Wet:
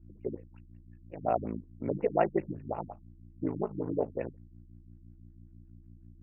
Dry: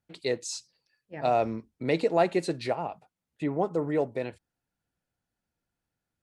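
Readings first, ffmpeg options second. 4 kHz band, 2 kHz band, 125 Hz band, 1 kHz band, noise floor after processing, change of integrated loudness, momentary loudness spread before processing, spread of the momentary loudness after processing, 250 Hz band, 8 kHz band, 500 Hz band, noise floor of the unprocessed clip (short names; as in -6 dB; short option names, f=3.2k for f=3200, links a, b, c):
under -20 dB, -10.0 dB, -2.5 dB, -5.0 dB, -56 dBFS, -4.5 dB, 13 LU, 15 LU, -4.0 dB, under -35 dB, -5.0 dB, under -85 dBFS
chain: -af "aeval=exprs='val(0)+0.00398*(sin(2*PI*60*n/s)+sin(2*PI*2*60*n/s)/2+sin(2*PI*3*60*n/s)/3+sin(2*PI*4*60*n/s)/4+sin(2*PI*5*60*n/s)/5)':c=same,aeval=exprs='val(0)*sin(2*PI*27*n/s)':c=same,afftfilt=real='re*lt(b*sr/1024,280*pow(3000/280,0.5+0.5*sin(2*PI*5.5*pts/sr)))':imag='im*lt(b*sr/1024,280*pow(3000/280,0.5+0.5*sin(2*PI*5.5*pts/sr)))':win_size=1024:overlap=0.75"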